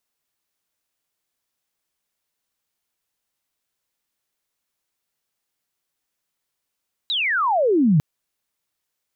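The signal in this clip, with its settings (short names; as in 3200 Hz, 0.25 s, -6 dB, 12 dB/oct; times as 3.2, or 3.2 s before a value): chirp logarithmic 4000 Hz -> 140 Hz -20 dBFS -> -12 dBFS 0.90 s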